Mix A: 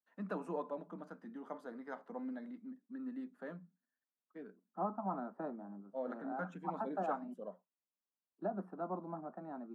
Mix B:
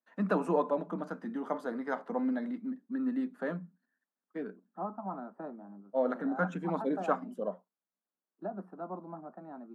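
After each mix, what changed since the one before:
first voice +11.5 dB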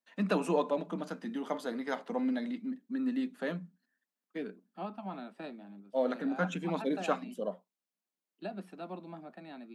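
second voice: add resonant high shelf 1700 Hz +13.5 dB, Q 1.5; master: add resonant high shelf 2000 Hz +10 dB, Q 1.5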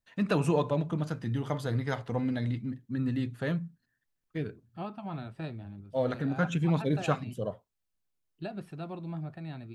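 master: remove rippled Chebyshev high-pass 180 Hz, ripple 3 dB

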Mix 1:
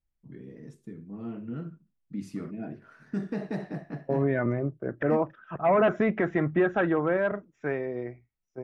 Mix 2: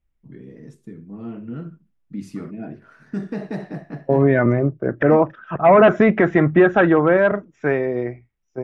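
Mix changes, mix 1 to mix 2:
first voice +4.5 dB; second voice +10.5 dB

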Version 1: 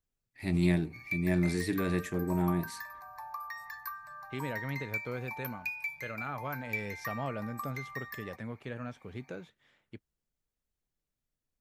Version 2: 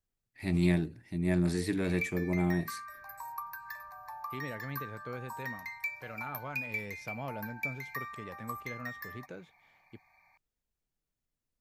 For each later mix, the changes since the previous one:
second voice -3.5 dB; background: entry +0.90 s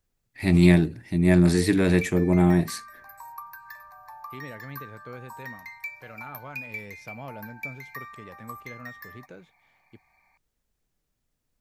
first voice +10.5 dB

